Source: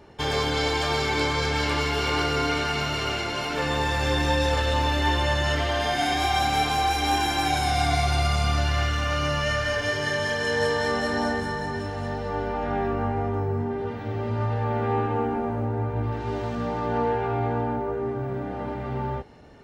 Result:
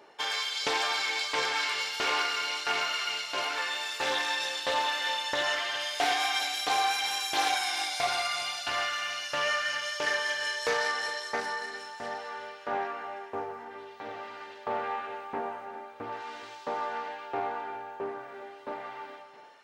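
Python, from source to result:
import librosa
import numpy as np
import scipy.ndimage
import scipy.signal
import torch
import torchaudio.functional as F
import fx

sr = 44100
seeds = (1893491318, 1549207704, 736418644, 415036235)

y = fx.filter_lfo_highpass(x, sr, shape='saw_up', hz=1.5, low_hz=420.0, high_hz=4200.0, q=0.73)
y = fx.rev_gated(y, sr, seeds[0], gate_ms=440, shape='rising', drr_db=10.0)
y = fx.doppler_dist(y, sr, depth_ms=0.2)
y = y * librosa.db_to_amplitude(-1.0)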